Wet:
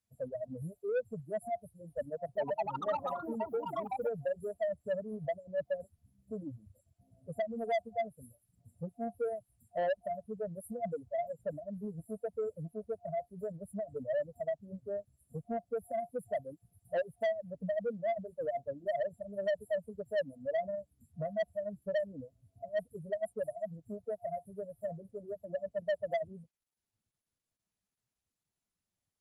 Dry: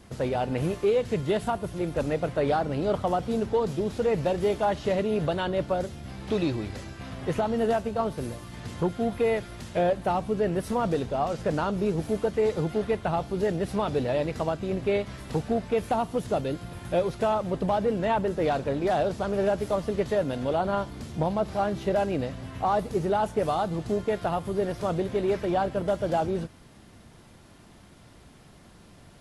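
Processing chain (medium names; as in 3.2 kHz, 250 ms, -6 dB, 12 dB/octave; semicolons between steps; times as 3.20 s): expander on every frequency bin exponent 2; reverb removal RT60 0.56 s; frequency weighting A; FFT band-reject 710–7300 Hz; peaking EQ 1.9 kHz +11 dB 0.21 oct; static phaser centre 1.8 kHz, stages 8; saturation -34.5 dBFS, distortion -10 dB; 2.05–4.48 s: ever faster or slower copies 304 ms, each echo +6 st, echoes 2; trim +7.5 dB; Opus 32 kbps 48 kHz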